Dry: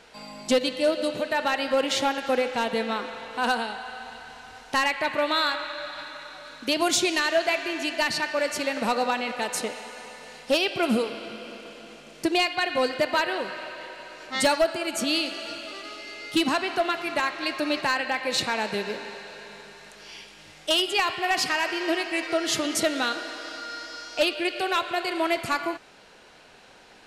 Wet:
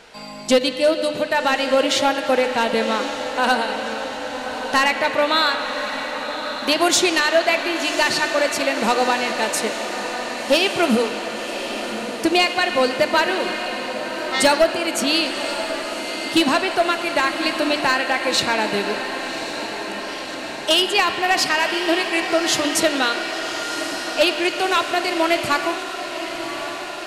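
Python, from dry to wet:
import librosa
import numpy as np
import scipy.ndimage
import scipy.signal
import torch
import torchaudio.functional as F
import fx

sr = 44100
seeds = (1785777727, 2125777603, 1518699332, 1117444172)

y = fx.hum_notches(x, sr, base_hz=60, count=5)
y = fx.echo_diffused(y, sr, ms=1122, feedback_pct=73, wet_db=-10)
y = y * 10.0 ** (6.0 / 20.0)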